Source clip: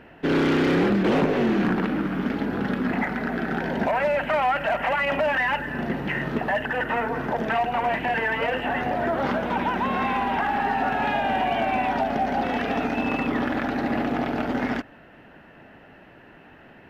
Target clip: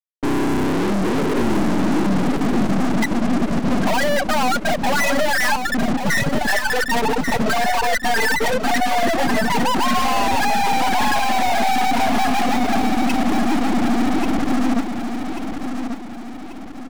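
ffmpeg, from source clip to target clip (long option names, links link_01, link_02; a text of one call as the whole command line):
ffmpeg -i in.wav -af "afftfilt=real='re*gte(hypot(re,im),0.282)':imag='im*gte(hypot(re,im),0.282)':win_size=1024:overlap=0.75,equalizer=frequency=590:width=2.5:gain=-10.5,acompressor=threshold=-34dB:ratio=4,aeval=exprs='sgn(val(0))*max(abs(val(0))-0.00112,0)':channel_layout=same,apsyclip=35.5dB,aeval=exprs='(tanh(12.6*val(0)+0.65)-tanh(0.65))/12.6':channel_layout=same,aecho=1:1:1138|2276|3414|4552|5690:0.447|0.192|0.0826|0.0355|0.0153,volume=3dB" out.wav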